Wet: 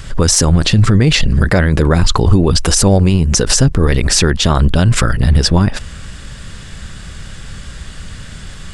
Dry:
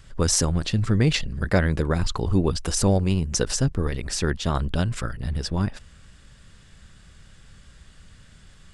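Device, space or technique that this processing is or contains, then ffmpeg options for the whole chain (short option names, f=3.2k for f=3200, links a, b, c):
loud club master: -af "acompressor=threshold=-25dB:ratio=2,asoftclip=type=hard:threshold=-12.5dB,alimiter=level_in=20.5dB:limit=-1dB:release=50:level=0:latency=1,volume=-1dB"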